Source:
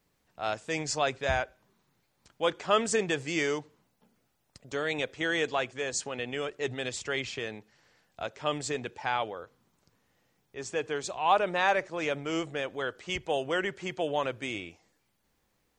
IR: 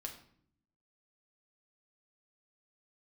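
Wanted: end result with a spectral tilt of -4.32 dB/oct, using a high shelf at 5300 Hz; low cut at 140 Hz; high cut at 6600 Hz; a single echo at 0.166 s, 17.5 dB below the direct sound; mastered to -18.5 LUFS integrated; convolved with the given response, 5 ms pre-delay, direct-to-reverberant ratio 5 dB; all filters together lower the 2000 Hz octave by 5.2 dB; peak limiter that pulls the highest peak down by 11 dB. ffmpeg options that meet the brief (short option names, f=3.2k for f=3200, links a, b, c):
-filter_complex "[0:a]highpass=140,lowpass=6.6k,equalizer=f=2k:t=o:g=-5.5,highshelf=f=5.3k:g=-8.5,alimiter=limit=-24dB:level=0:latency=1,aecho=1:1:166:0.133,asplit=2[a][b];[1:a]atrim=start_sample=2205,adelay=5[c];[b][c]afir=irnorm=-1:irlink=0,volume=-2.5dB[d];[a][d]amix=inputs=2:normalize=0,volume=16dB"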